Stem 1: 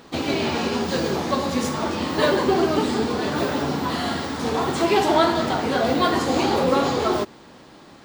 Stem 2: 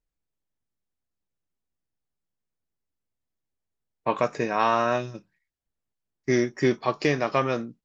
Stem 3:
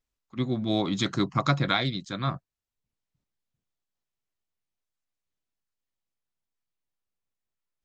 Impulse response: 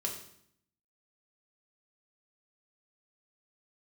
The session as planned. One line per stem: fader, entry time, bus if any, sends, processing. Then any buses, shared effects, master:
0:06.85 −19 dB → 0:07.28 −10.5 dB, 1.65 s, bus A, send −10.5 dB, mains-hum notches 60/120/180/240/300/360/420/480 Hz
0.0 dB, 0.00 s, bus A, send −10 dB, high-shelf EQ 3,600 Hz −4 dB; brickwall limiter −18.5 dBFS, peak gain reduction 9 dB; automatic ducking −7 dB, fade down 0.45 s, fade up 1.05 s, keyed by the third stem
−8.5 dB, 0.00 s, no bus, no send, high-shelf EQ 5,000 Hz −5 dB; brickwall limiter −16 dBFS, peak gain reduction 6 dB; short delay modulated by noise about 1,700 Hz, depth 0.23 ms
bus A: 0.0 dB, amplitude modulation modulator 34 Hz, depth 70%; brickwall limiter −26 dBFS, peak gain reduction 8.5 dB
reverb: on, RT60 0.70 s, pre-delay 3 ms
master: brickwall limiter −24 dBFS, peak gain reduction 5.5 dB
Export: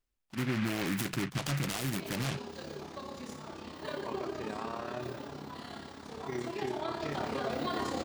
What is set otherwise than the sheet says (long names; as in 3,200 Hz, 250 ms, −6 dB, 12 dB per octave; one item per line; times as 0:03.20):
stem 2 0.0 dB → −10.0 dB
stem 3 −8.5 dB → +1.0 dB